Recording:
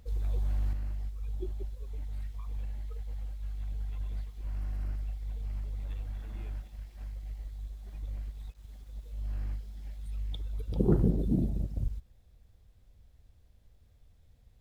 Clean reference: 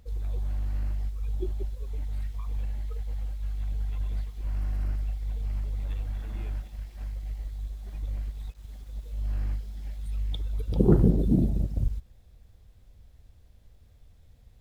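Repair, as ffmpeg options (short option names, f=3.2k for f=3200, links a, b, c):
-af "asetnsamples=n=441:p=0,asendcmd='0.73 volume volume 5.5dB',volume=0dB"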